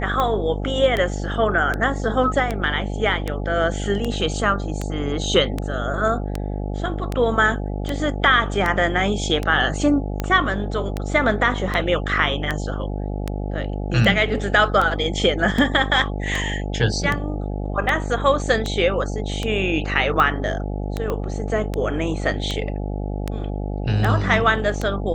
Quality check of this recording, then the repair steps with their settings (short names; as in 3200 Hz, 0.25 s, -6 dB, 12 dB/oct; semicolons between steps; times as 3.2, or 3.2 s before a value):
buzz 50 Hz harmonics 17 -26 dBFS
tick 78 rpm -10 dBFS
21.1 pop -13 dBFS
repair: de-click; de-hum 50 Hz, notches 17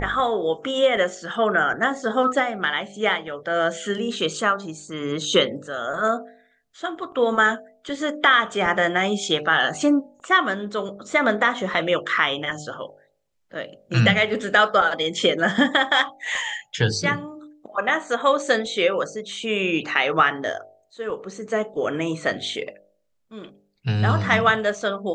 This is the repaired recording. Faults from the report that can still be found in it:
21.1 pop